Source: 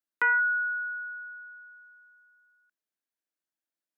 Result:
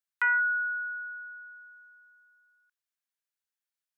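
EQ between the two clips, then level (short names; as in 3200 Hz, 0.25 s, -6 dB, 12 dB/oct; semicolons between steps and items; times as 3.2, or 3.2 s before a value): HPF 1100 Hz 12 dB/oct; 0.0 dB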